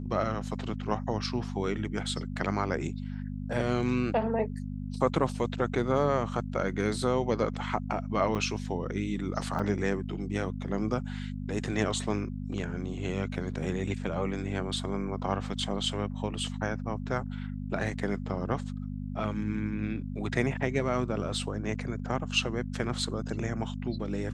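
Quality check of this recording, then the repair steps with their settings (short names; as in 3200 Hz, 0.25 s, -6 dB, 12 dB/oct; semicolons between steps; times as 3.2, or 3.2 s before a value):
hum 50 Hz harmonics 5 -36 dBFS
8.35–8.36 gap 5.4 ms
9.59–9.6 gap 5.1 ms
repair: de-hum 50 Hz, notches 5; interpolate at 8.35, 5.4 ms; interpolate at 9.59, 5.1 ms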